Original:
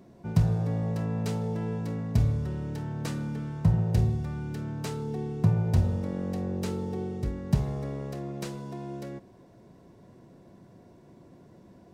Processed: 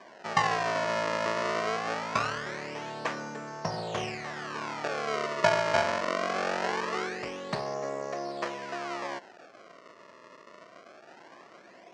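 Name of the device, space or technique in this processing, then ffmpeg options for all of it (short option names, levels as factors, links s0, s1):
circuit-bent sampling toy: -af "acrusher=samples=32:mix=1:aa=0.000001:lfo=1:lforange=51.2:lforate=0.22,highpass=520,equalizer=f=650:t=q:w=4:g=6,equalizer=f=1100:t=q:w=4:g=5,equalizer=f=1800:t=q:w=4:g=4,equalizer=f=3600:t=q:w=4:g=-6,lowpass=f=6000:w=0.5412,lowpass=f=6000:w=1.3066,volume=2"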